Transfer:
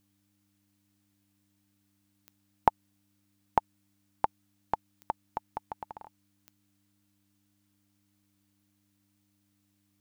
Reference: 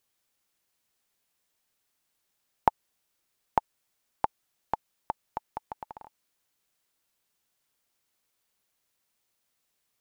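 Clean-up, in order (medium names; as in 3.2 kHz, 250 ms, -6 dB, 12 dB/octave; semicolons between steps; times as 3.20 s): de-click; de-hum 99.9 Hz, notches 3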